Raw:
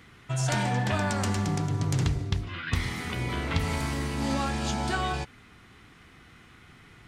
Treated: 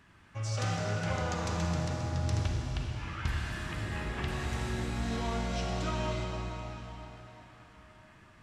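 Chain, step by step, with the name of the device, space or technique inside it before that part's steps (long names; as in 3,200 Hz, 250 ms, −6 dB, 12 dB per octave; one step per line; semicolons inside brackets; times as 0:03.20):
slowed and reverbed (speed change −16%; convolution reverb RT60 4.5 s, pre-delay 35 ms, DRR −0.5 dB)
level −8 dB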